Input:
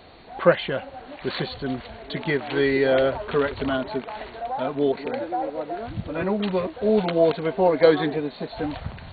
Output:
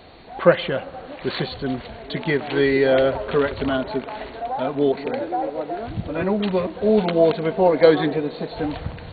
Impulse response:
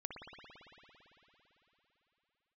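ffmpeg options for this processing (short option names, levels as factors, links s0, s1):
-filter_complex "[0:a]asplit=2[s0][s1];[1:a]atrim=start_sample=2205,lowpass=f=1400:w=0.5412,lowpass=f=1400:w=1.3066[s2];[s1][s2]afir=irnorm=-1:irlink=0,volume=0.224[s3];[s0][s3]amix=inputs=2:normalize=0,volume=1.26"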